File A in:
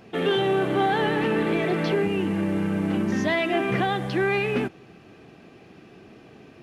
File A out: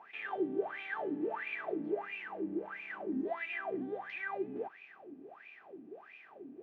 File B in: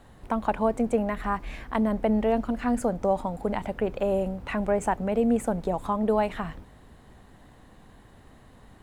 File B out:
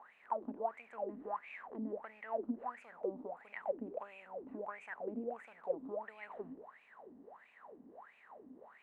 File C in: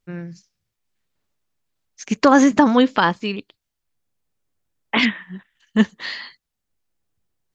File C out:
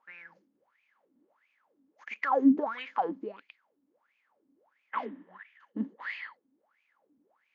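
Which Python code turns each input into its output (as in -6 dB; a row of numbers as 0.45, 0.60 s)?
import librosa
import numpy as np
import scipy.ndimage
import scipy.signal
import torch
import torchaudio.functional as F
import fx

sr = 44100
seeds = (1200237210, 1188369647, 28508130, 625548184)

y = fx.bin_compress(x, sr, power=0.6)
y = fx.wah_lfo(y, sr, hz=1.5, low_hz=260.0, high_hz=2500.0, q=14.0)
y = y * librosa.db_to_amplitude(-3.0)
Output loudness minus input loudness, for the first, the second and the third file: -14.5, -16.5, -13.0 LU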